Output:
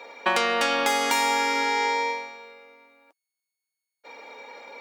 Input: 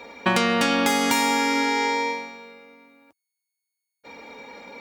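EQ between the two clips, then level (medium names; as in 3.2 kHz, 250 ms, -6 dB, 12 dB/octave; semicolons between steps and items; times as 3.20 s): Chebyshev high-pass 520 Hz, order 2; treble shelf 8.7 kHz -4 dB; 0.0 dB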